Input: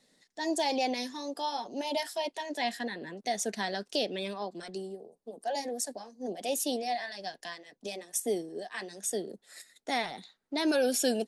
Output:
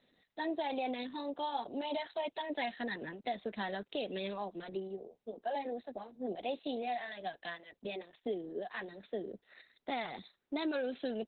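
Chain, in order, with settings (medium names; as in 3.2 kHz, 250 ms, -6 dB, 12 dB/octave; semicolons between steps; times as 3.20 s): 8.32–10.61 s: peaking EQ 2.1 kHz -> 7.1 kHz -4.5 dB 0.62 oct; compression 6:1, threshold -32 dBFS, peak gain reduction 9 dB; Opus 8 kbps 48 kHz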